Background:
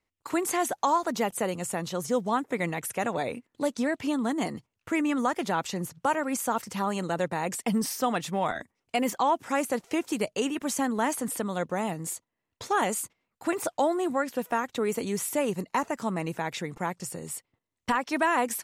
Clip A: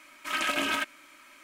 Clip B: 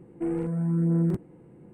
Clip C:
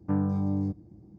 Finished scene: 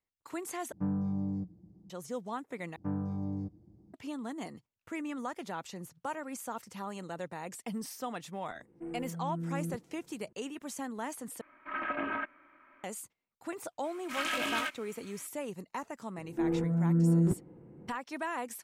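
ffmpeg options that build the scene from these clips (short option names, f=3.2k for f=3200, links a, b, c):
-filter_complex "[3:a]asplit=2[a][b];[2:a]asplit=2[c][d];[1:a]asplit=2[e][f];[0:a]volume=-11.5dB[g];[a]equalizer=f=180:t=o:w=0.21:g=13[h];[e]lowpass=f=1.8k:w=0.5412,lowpass=f=1.8k:w=1.3066[i];[f]flanger=delay=18:depth=6.8:speed=1.4[j];[d]lowpass=f=2k:p=1[k];[g]asplit=4[l][m][n][o];[l]atrim=end=0.724[p];[h]atrim=end=1.18,asetpts=PTS-STARTPTS,volume=-9.5dB[q];[m]atrim=start=1.896:end=2.764[r];[b]atrim=end=1.18,asetpts=PTS-STARTPTS,volume=-8dB[s];[n]atrim=start=3.936:end=11.414[t];[i]atrim=end=1.43,asetpts=PTS-STARTPTS,volume=-3.5dB[u];[o]atrim=start=12.836[v];[c]atrim=end=1.73,asetpts=PTS-STARTPTS,volume=-13dB,afade=t=in:d=0.004:c=hsin,afade=t=out:st=1.726:d=0.004:c=hsin,adelay=8600[w];[j]atrim=end=1.43,asetpts=PTS-STARTPTS,volume=-1.5dB,afade=t=in:d=0.004:c=hsin,afade=t=out:st=1.426:d=0.004:c=hsin,adelay=13840[x];[k]atrim=end=1.73,asetpts=PTS-STARTPTS,volume=-1.5dB,afade=t=in:d=0.004:c=hsin,afade=t=out:st=1.726:d=0.004:c=hsin,adelay=16170[y];[p][q]acrossfade=d=0.004:c1=hsin:c2=hsin[z];[z][r]acrossfade=d=0.004:c1=hsin:c2=hsin[aa];[aa][s]acrossfade=d=0.004:c1=hsin:c2=hsin[ab];[ab][t]acrossfade=d=0.004:c1=hsin:c2=hsin[ac];[ac][u]acrossfade=d=0.004:c1=hsin:c2=hsin[ad];[ad][v]acrossfade=d=0.004:c1=hsin:c2=hsin[ae];[ae][w][x][y]amix=inputs=4:normalize=0"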